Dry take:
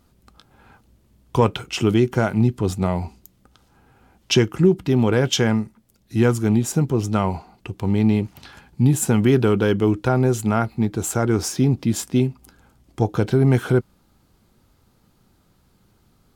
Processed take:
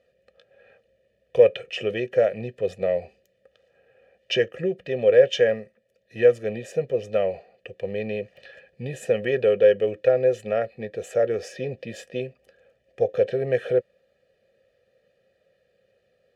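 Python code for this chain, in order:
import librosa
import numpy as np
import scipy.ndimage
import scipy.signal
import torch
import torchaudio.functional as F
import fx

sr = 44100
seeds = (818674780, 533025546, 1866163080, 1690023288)

y = fx.vowel_filter(x, sr, vowel='e')
y = y + 0.75 * np.pad(y, (int(1.7 * sr / 1000.0), 0))[:len(y)]
y = y * librosa.db_to_amplitude(8.0)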